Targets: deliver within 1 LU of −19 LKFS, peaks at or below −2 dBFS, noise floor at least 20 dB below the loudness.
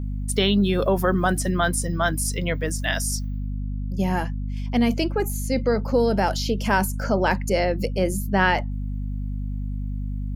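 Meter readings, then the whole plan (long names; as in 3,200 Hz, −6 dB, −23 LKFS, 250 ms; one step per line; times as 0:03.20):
mains hum 50 Hz; hum harmonics up to 250 Hz; level of the hum −25 dBFS; integrated loudness −23.5 LKFS; sample peak −5.0 dBFS; target loudness −19.0 LKFS
→ hum removal 50 Hz, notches 5
level +4.5 dB
brickwall limiter −2 dBFS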